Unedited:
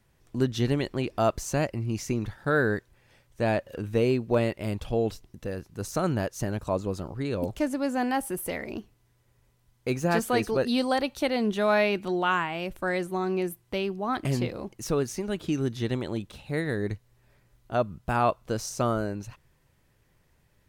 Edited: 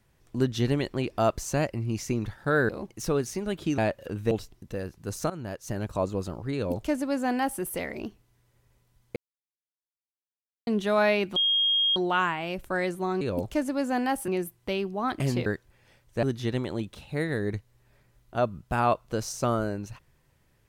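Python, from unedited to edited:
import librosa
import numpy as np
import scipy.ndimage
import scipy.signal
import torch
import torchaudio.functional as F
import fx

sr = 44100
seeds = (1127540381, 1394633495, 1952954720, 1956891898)

y = fx.edit(x, sr, fx.swap(start_s=2.69, length_s=0.77, other_s=14.51, other_length_s=1.09),
    fx.cut(start_s=3.99, length_s=1.04),
    fx.fade_in_from(start_s=6.02, length_s=0.6, floor_db=-16.0),
    fx.duplicate(start_s=7.26, length_s=1.07, to_s=13.33),
    fx.silence(start_s=9.88, length_s=1.51),
    fx.insert_tone(at_s=12.08, length_s=0.6, hz=3250.0, db=-20.5), tone=tone)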